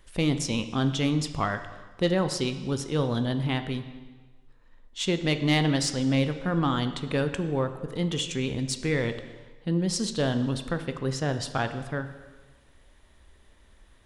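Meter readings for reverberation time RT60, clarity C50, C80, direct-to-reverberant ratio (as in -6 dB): 1.3 s, 11.0 dB, 12.5 dB, 8.5 dB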